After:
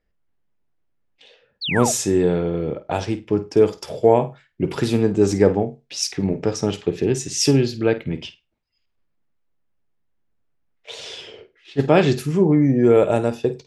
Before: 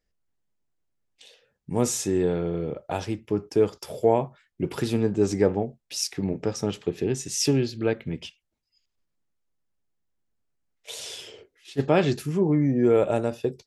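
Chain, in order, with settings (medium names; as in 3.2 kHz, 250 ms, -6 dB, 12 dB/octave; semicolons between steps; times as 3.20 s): flutter echo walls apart 8.7 m, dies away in 0.23 s; painted sound fall, 1.61–1.92 s, 580–4800 Hz -30 dBFS; level-controlled noise filter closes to 2.8 kHz, open at -20.5 dBFS; trim +5.5 dB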